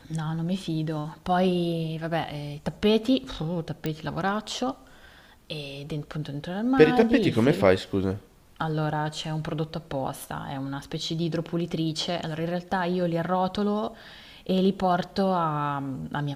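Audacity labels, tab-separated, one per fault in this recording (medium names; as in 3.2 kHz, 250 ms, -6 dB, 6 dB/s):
3.860000	3.860000	pop -15 dBFS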